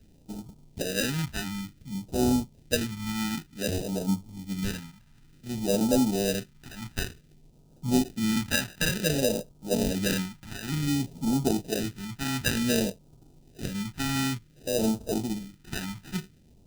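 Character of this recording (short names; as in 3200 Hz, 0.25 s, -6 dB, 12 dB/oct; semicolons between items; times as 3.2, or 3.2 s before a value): aliases and images of a low sample rate 1100 Hz, jitter 0%; phasing stages 2, 0.55 Hz, lowest notch 480–1800 Hz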